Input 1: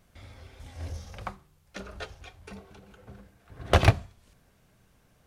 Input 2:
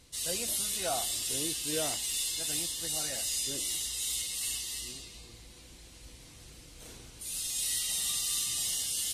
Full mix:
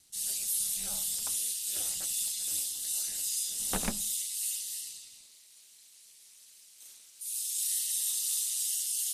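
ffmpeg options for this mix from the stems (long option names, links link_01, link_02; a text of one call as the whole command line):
ffmpeg -i stem1.wav -i stem2.wav -filter_complex "[0:a]bandreject=frequency=50:width_type=h:width=6,bandreject=frequency=100:width_type=h:width=6,volume=-11.5dB[link_01];[1:a]aderivative,volume=3dB[link_02];[link_01][link_02]amix=inputs=2:normalize=0,aeval=exprs='val(0)*sin(2*PI*110*n/s)':channel_layout=same" out.wav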